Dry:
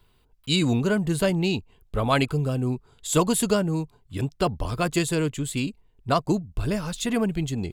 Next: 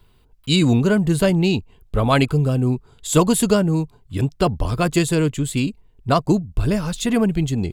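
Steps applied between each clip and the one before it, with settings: low shelf 380 Hz +4 dB; gain +3.5 dB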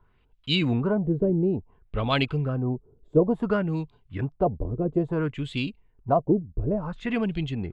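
LFO low-pass sine 0.58 Hz 390–3400 Hz; gain -8.5 dB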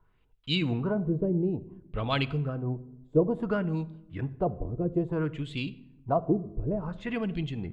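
shoebox room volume 2900 m³, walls furnished, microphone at 0.63 m; gain -4.5 dB

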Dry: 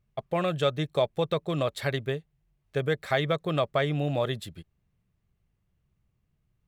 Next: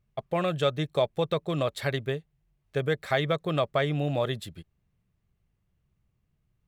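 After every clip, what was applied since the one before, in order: nothing audible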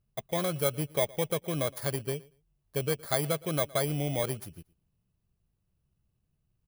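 FFT order left unsorted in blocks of 16 samples; feedback echo 0.116 s, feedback 18%, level -23 dB; gain -3 dB

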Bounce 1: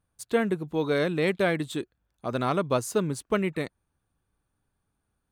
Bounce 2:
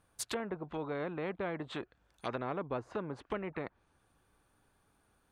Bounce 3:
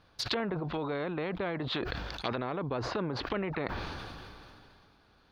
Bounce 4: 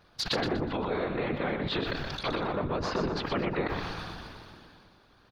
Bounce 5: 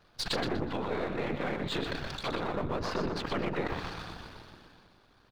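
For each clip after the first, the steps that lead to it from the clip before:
treble ducked by the level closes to 660 Hz, closed at -24.5 dBFS; tone controls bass -8 dB, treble -3 dB; spectral compressor 2:1; gain -6.5 dB
compressor, threshold -39 dBFS, peak gain reduction 8 dB; resonant high shelf 6300 Hz -12.5 dB, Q 3; sustainer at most 23 dB/s; gain +7.5 dB
whisperiser; feedback echo 0.122 s, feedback 28%, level -7 dB; gain +2.5 dB
half-wave gain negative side -7 dB

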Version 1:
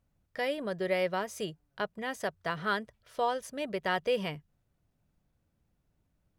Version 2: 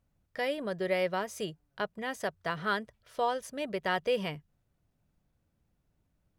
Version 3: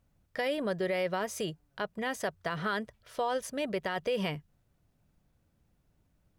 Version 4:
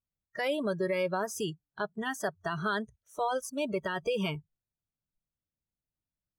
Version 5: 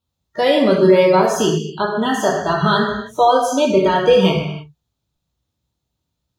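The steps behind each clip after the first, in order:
nothing audible
limiter -26.5 dBFS, peak gain reduction 9.5 dB; gain +4 dB
spectral noise reduction 26 dB; gain +1.5 dB
reverb, pre-delay 3 ms, DRR -2 dB; gain +6.5 dB

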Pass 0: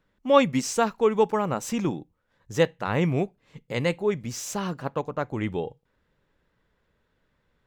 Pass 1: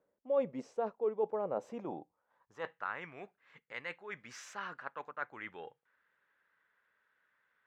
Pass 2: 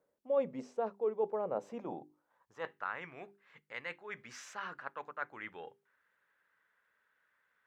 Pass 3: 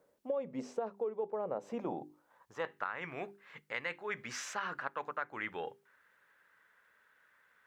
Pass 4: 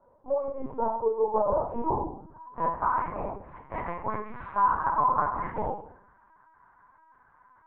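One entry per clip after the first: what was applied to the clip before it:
reverse; compressor 5:1, threshold -30 dBFS, peak gain reduction 16.5 dB; reverse; band-pass sweep 540 Hz -> 1600 Hz, 1.63–3.05; gain +3.5 dB
notches 50/100/150/200/250/300/350/400 Hz
compressor 10:1, threshold -41 dBFS, peak gain reduction 15.5 dB; gain +8 dB
synth low-pass 1000 Hz, resonance Q 7.9; shoebox room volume 78 m³, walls mixed, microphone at 2.8 m; LPC vocoder at 8 kHz pitch kept; gain -6 dB

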